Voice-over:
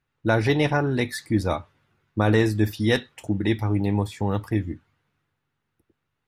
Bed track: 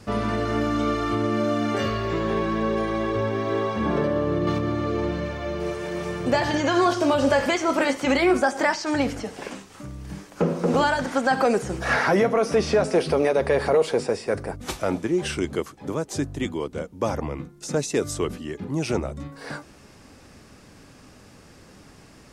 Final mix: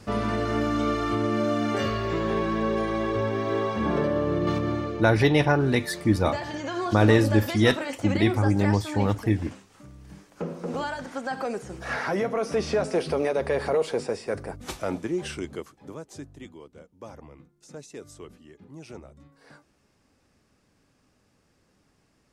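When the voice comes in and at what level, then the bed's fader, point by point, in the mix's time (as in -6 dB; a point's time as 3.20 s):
4.75 s, +1.0 dB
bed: 4.75 s -1.5 dB
5.05 s -10 dB
11.58 s -10 dB
12.65 s -4.5 dB
15.07 s -4.5 dB
16.65 s -17.5 dB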